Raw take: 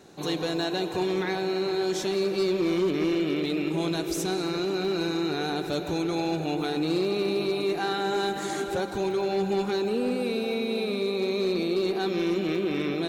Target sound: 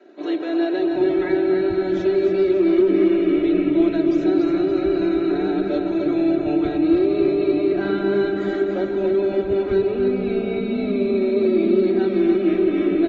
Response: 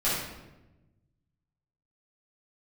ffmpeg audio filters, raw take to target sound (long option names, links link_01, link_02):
-filter_complex "[0:a]adynamicequalizer=threshold=0.00631:dfrequency=160:dqfactor=1.6:tfrequency=160:tqfactor=1.6:attack=5:release=100:ratio=0.375:range=2.5:mode=boostabove:tftype=bell,aecho=1:1:3.1:0.94,acrossover=split=280[link_01][link_02];[link_01]adelay=760[link_03];[link_03][link_02]amix=inputs=2:normalize=0,acontrast=62,lowpass=1400,equalizer=frequency=960:width_type=o:width=0.75:gain=-14.5,asplit=2[link_04][link_05];[link_05]aecho=0:1:285|570|855|1140|1425:0.473|0.213|0.0958|0.0431|0.0194[link_06];[link_04][link_06]amix=inputs=2:normalize=0" -ar 48000 -c:a aac -b:a 24k